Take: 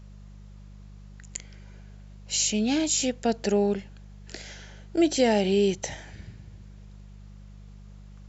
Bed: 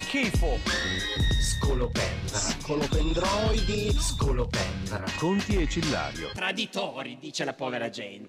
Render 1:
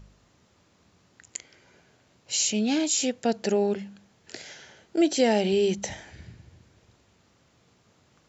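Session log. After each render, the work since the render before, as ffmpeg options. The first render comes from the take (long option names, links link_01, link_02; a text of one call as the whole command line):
ffmpeg -i in.wav -af "bandreject=frequency=50:width_type=h:width=4,bandreject=frequency=100:width_type=h:width=4,bandreject=frequency=150:width_type=h:width=4,bandreject=frequency=200:width_type=h:width=4" out.wav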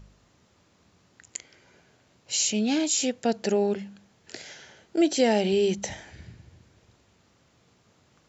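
ffmpeg -i in.wav -af anull out.wav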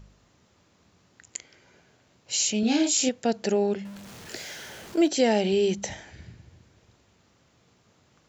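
ffmpeg -i in.wav -filter_complex "[0:a]asettb=1/sr,asplit=3[link_01][link_02][link_03];[link_01]atrim=end=2.604[link_04];[link_02]atrim=start=2.6:end=3.09,asetpts=PTS-STARTPTS,afade=type=in:duration=0.004:curve=qsin,afade=type=out:start_time=0.486:duration=0.004:curve=qsin,asplit=2[link_05][link_06];[link_06]adelay=31,volume=-3dB[link_07];[link_05][link_07]amix=inputs=2:normalize=0,atrim=end_sample=21609[link_08];[link_03]atrim=start=3.086[link_09];[link_04][link_08]acrossfade=duration=0.004:curve1=hsin:curve2=qsin[link_10];[link_10][link_09]acrossfade=duration=0.004:curve1=qsin:curve2=hsin,asettb=1/sr,asplit=3[link_11][link_12][link_13];[link_11]atrim=end=3.854[link_14];[link_12]atrim=start=3.85:end=5.08,asetpts=PTS-STARTPTS,afade=type=in:duration=0.004:curve=qsin,afade=type=out:start_time=1.226:duration=0.004:curve=qsin,aeval=exprs='val(0)+0.5*0.0106*sgn(val(0))':channel_layout=same[link_15];[link_13]atrim=start=5.076[link_16];[link_14][link_15]acrossfade=duration=0.004:curve1=hsin:curve2=qsin[link_17];[link_17][link_16]acrossfade=duration=0.004:curve1=qsin:curve2=hsin" out.wav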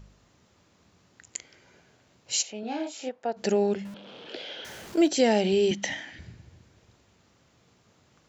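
ffmpeg -i in.wav -filter_complex "[0:a]asplit=3[link_01][link_02][link_03];[link_01]afade=type=out:start_time=2.41:duration=0.02[link_04];[link_02]bandpass=frequency=860:width_type=q:width=1.3,afade=type=in:start_time=2.41:duration=0.02,afade=type=out:start_time=3.36:duration=0.02[link_05];[link_03]afade=type=in:start_time=3.36:duration=0.02[link_06];[link_04][link_05][link_06]amix=inputs=3:normalize=0,asettb=1/sr,asplit=3[link_07][link_08][link_09];[link_07]atrim=end=3.944[link_10];[link_08]atrim=start=3.94:end=4.65,asetpts=PTS-STARTPTS,afade=type=in:duration=0.004:curve=qsin,afade=type=out:start_time=0.706:duration=0.004:curve=qsin,highpass=270,equalizer=frequency=290:width_type=q:width=4:gain=4,equalizer=frequency=510:width_type=q:width=4:gain=8,equalizer=frequency=1100:width_type=q:width=4:gain=-3,equalizer=frequency=1900:width_type=q:width=4:gain=-9,equalizer=frequency=3200:width_type=q:width=4:gain=9,lowpass=frequency=3800:width=0.5412,lowpass=frequency=3800:width=1.3066[link_11];[link_09]atrim=start=4.646[link_12];[link_10][link_11]acrossfade=duration=0.004:curve1=hsin:curve2=qsin[link_13];[link_13][link_12]acrossfade=duration=0.004:curve1=qsin:curve2=hsin,asettb=1/sr,asplit=3[link_14][link_15][link_16];[link_14]atrim=end=5.714[link_17];[link_15]atrim=start=5.71:end=6.19,asetpts=PTS-STARTPTS,afade=type=in:duration=0.004:curve=qsin,afade=type=out:start_time=0.476:duration=0.004:curve=qsin,highpass=170,equalizer=frequency=280:width_type=q:width=4:gain=9,equalizer=frequency=420:width_type=q:width=4:gain=-9,equalizer=frequency=1900:width_type=q:width=4:gain=10,equalizer=frequency=3100:width_type=q:width=4:gain=9,lowpass=frequency=6800:width=0.5412,lowpass=frequency=6800:width=1.3066[link_18];[link_16]atrim=start=6.186[link_19];[link_17][link_18]acrossfade=duration=0.004:curve1=hsin:curve2=qsin[link_20];[link_20][link_19]acrossfade=duration=0.004:curve1=qsin:curve2=hsin" out.wav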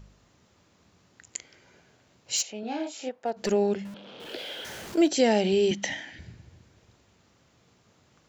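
ffmpeg -i in.wav -filter_complex "[0:a]asplit=3[link_01][link_02][link_03];[link_01]afade=type=out:start_time=2.35:duration=0.02[link_04];[link_02]asoftclip=type=hard:threshold=-20.5dB,afade=type=in:start_time=2.35:duration=0.02,afade=type=out:start_time=3.51:duration=0.02[link_05];[link_03]afade=type=in:start_time=3.51:duration=0.02[link_06];[link_04][link_05][link_06]amix=inputs=3:normalize=0,asettb=1/sr,asplit=3[link_07][link_08][link_09];[link_07]atrim=end=4.204[link_10];[link_08]atrim=start=4.2:end=4.95,asetpts=PTS-STARTPTS,afade=type=in:duration=0.004:curve=qsin,afade=type=out:start_time=0.746:duration=0.004:curve=qsin,aeval=exprs='val(0)+0.5*0.00531*sgn(val(0))':channel_layout=same[link_11];[link_09]atrim=start=4.946[link_12];[link_10][link_11]acrossfade=duration=0.004:curve1=hsin:curve2=qsin[link_13];[link_13][link_12]acrossfade=duration=0.004:curve1=qsin:curve2=hsin,asettb=1/sr,asplit=3[link_14][link_15][link_16];[link_14]atrim=end=5.884[link_17];[link_15]atrim=start=5.88:end=6.29,asetpts=PTS-STARTPTS,afade=type=in:duration=0.004:curve=qsin,afade=type=out:start_time=0.406:duration=0.004:curve=qsin,bandreject=frequency=1200:width=5.8[link_18];[link_16]atrim=start=6.286[link_19];[link_17][link_18]acrossfade=duration=0.004:curve1=hsin:curve2=qsin[link_20];[link_20][link_19]acrossfade=duration=0.004:curve1=qsin:curve2=hsin" out.wav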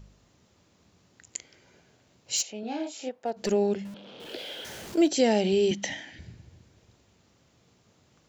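ffmpeg -i in.wav -af "equalizer=frequency=1400:width_type=o:width=1.7:gain=-3.5" out.wav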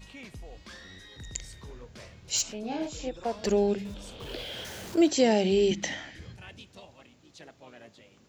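ffmpeg -i in.wav -i bed.wav -filter_complex "[1:a]volume=-19.5dB[link_01];[0:a][link_01]amix=inputs=2:normalize=0" out.wav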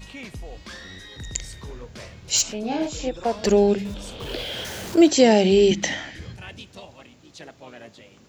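ffmpeg -i in.wav -af "volume=7.5dB" out.wav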